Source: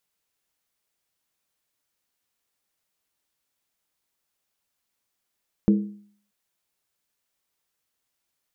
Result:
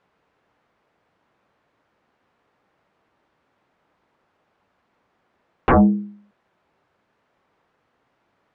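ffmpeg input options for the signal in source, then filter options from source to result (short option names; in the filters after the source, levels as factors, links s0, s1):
-f lavfi -i "aevalsrc='0.251*pow(10,-3*t/0.54)*sin(2*PI*205*t)+0.106*pow(10,-3*t/0.428)*sin(2*PI*326.8*t)+0.0447*pow(10,-3*t/0.369)*sin(2*PI*437.9*t)+0.0188*pow(10,-3*t/0.356)*sin(2*PI*470.7*t)+0.00794*pow(10,-3*t/0.332)*sin(2*PI*543.9*t)':d=0.63:s=44100"
-af "highpass=f=100:p=1,aeval=exprs='0.335*sin(PI/2*8.91*val(0)/0.335)':c=same,lowpass=1300"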